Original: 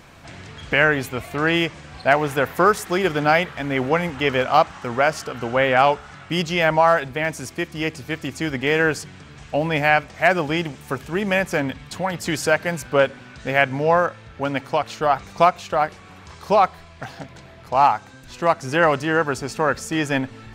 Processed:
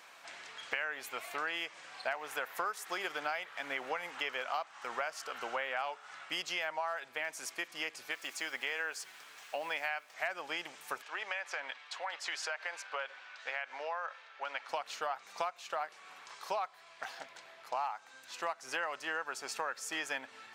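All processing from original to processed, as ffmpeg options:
-filter_complex "[0:a]asettb=1/sr,asplit=3[a][b][c];[a]atrim=end=8.114[d];[b]atrim=start=8.11:end=10.14,asetpts=PTS-STARTPTS,afade=t=in:d=0.004:c=qsin,afade=t=out:st=2.026:d=0.004:c=qsin,lowshelf=f=270:g=-8.5,acrusher=bits=7:mix=0:aa=0.5[e];[c]atrim=start=10.136[f];[d][e]acrossfade=d=0.004:c1=hsin:c2=qsin[g];[g][f]acrossfade=d=0.004:c1=qsin:c2=hsin,asettb=1/sr,asplit=3[h][i][j];[h]atrim=end=11.024[k];[i]atrim=start=11.02:end=14.69,asetpts=PTS-STARTPTS,afade=t=in:d=0.004:c=qsin,afade=t=out:st=3.666:d=0.004:c=qsin,highpass=610,lowpass=4.9k,acompressor=threshold=-24dB:ratio=3:attack=3.2:release=140:knee=1:detection=peak[l];[j]atrim=start=14.686[m];[k][l]acrossfade=d=0.004:c1=hsin:c2=qsin[n];[n][m]acrossfade=d=0.004:c1=qsin:c2=hsin,highpass=790,acompressor=threshold=-28dB:ratio=6,volume=-5.5dB"

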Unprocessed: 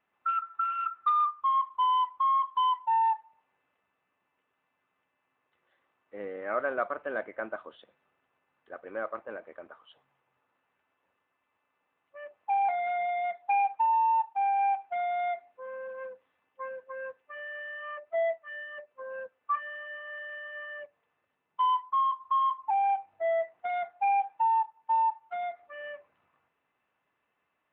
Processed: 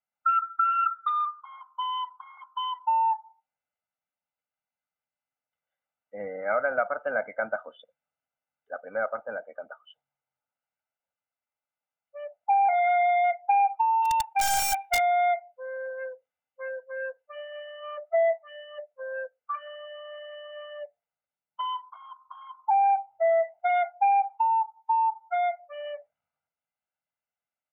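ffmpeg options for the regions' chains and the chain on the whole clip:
-filter_complex "[0:a]asettb=1/sr,asplit=3[a][b][c];[a]atrim=end=12.734[d];[b]atrim=start=12.73:end=13.39,asetpts=PTS-STARTPTS,afade=t=in:d=0.004:c=qsin,afade=t=out:st=0.656:d=0.004:c=qsin,asuperstop=centerf=940:order=4:qfactor=4.1,lowshelf=f=76:g=12[e];[c]atrim=start=13.386[f];[d][e]acrossfade=d=0.004:c1=hsin:c2=qsin[g];[g][f]acrossfade=d=0.004:c1=qsin:c2=hsin,asettb=1/sr,asplit=3[h][i][j];[h]atrim=end=14.024[k];[i]atrim=start=14.02:end=15,asetpts=PTS-STARTPTS,afade=t=in:d=0.004:c=qsin,afade=t=out:st=0.976:d=0.004:c=qsin,highshelf=f=1.5k:t=q:w=1.5:g=9,aeval=exprs='(mod(13.3*val(0)+1,2)-1)/13.3':c=same[l];[j]atrim=start=14.996[m];[k][l]acrossfade=d=0.004:c1=hsin:c2=qsin[n];[n][m]acrossfade=d=0.004:c1=qsin:c2=hsin,afftdn=nr=23:nf=-49,acompressor=threshold=-27dB:ratio=6,aecho=1:1:1.4:0.99,volume=2.5dB"

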